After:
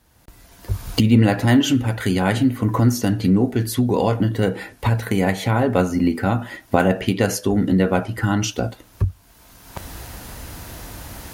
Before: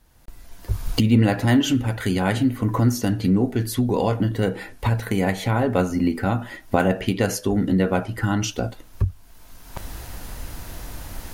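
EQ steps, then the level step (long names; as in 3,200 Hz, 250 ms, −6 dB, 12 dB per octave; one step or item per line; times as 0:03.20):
high-pass filter 57 Hz
+2.5 dB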